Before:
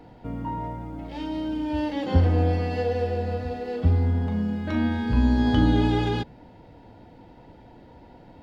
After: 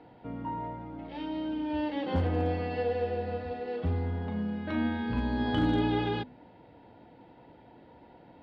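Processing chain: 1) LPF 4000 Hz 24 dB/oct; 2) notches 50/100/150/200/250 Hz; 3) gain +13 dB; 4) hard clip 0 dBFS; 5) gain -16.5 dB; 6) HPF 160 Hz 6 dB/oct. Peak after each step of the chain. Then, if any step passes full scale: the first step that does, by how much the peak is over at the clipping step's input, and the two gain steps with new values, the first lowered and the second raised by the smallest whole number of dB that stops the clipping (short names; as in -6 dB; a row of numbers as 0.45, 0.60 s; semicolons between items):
-8.0, -8.5, +4.5, 0.0, -16.5, -15.5 dBFS; step 3, 4.5 dB; step 3 +8 dB, step 5 -11.5 dB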